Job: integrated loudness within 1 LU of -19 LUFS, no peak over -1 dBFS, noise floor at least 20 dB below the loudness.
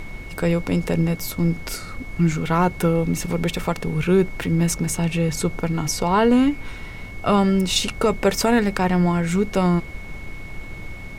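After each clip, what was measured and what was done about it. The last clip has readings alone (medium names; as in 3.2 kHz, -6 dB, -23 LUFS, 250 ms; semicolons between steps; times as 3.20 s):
steady tone 2.2 kHz; tone level -39 dBFS; noise floor -35 dBFS; noise floor target -41 dBFS; loudness -21.0 LUFS; peak level -8.0 dBFS; loudness target -19.0 LUFS
-> band-stop 2.2 kHz, Q 30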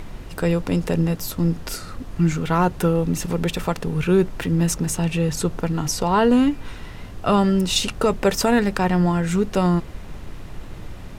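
steady tone not found; noise floor -37 dBFS; noise floor target -41 dBFS
-> noise print and reduce 6 dB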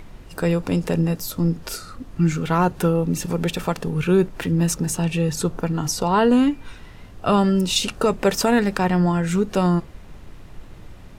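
noise floor -42 dBFS; loudness -21.0 LUFS; peak level -8.0 dBFS; loudness target -19.0 LUFS
-> trim +2 dB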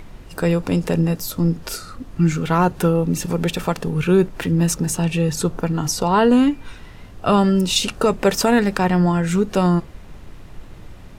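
loudness -19.0 LUFS; peak level -6.0 dBFS; noise floor -40 dBFS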